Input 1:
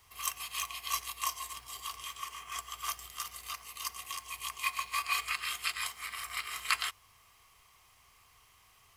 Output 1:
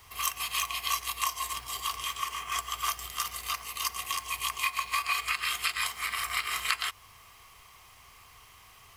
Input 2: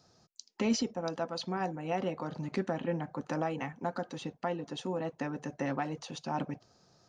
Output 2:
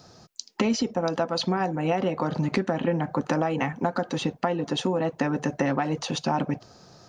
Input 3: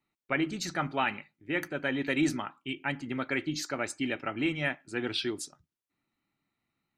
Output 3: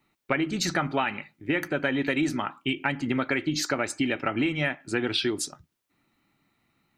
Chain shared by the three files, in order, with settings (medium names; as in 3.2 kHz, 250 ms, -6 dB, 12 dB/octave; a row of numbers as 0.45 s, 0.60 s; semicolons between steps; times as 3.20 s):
peaking EQ 8.5 kHz -2.5 dB 1.7 oct; compression 6:1, threshold -35 dBFS; peak normalisation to -9 dBFS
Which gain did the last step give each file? +9.5 dB, +14.0 dB, +12.0 dB